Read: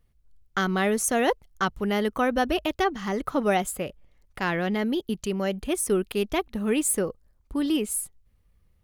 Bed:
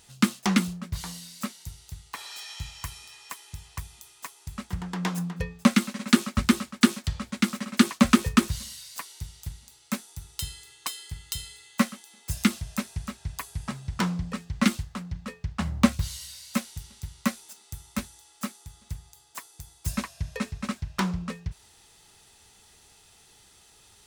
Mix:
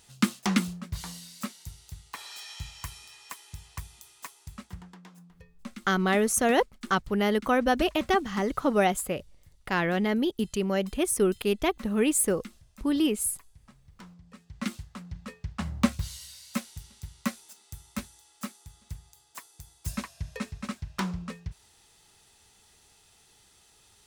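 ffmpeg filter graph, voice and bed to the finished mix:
-filter_complex "[0:a]adelay=5300,volume=0dB[a];[1:a]volume=16dB,afade=t=out:st=4.27:d=0.75:silence=0.1,afade=t=in:st=14.22:d=1.07:silence=0.11885[b];[a][b]amix=inputs=2:normalize=0"

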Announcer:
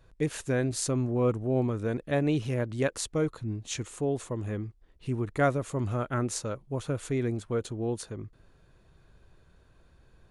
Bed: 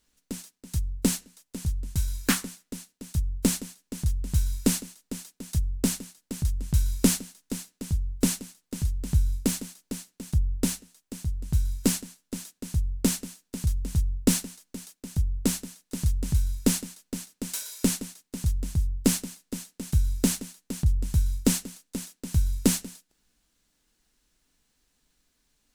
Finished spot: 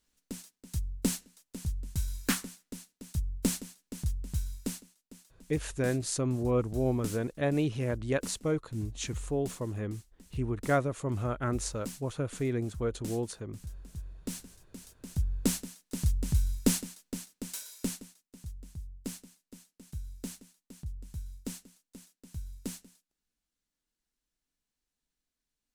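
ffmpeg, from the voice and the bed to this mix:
-filter_complex "[0:a]adelay=5300,volume=-2dB[a];[1:a]volume=8.5dB,afade=t=out:st=4.01:d=0.88:silence=0.266073,afade=t=in:st=14.27:d=1.19:silence=0.199526,afade=t=out:st=16.92:d=1.38:silence=0.199526[b];[a][b]amix=inputs=2:normalize=0"

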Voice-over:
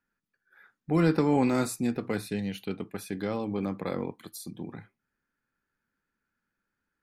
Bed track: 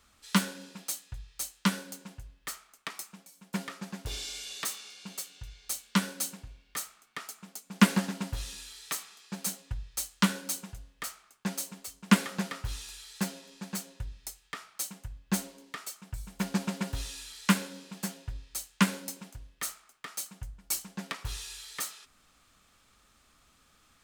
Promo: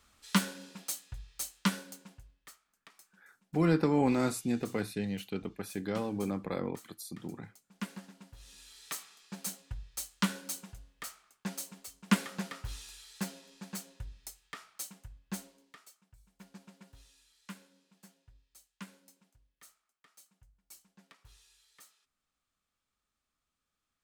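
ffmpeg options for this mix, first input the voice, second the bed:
-filter_complex "[0:a]adelay=2650,volume=-3dB[a];[1:a]volume=11.5dB,afade=t=out:st=1.59:d=0.99:silence=0.149624,afade=t=in:st=8.38:d=0.49:silence=0.211349,afade=t=out:st=14.6:d=1.49:silence=0.133352[b];[a][b]amix=inputs=2:normalize=0"

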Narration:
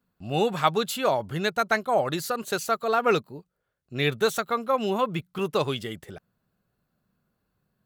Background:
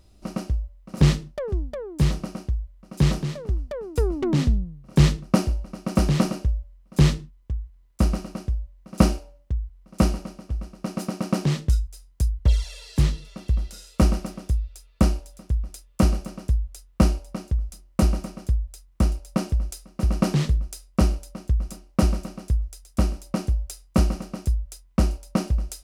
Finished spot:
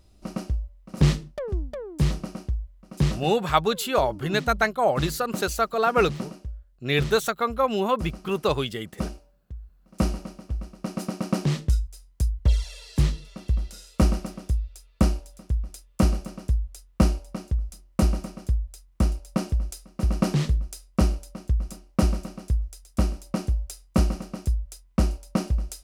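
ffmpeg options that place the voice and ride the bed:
-filter_complex "[0:a]adelay=2900,volume=1.5dB[a];[1:a]volume=9dB,afade=t=out:st=2.97:d=0.43:silence=0.298538,afade=t=in:st=9.6:d=0.67:silence=0.281838[b];[a][b]amix=inputs=2:normalize=0"

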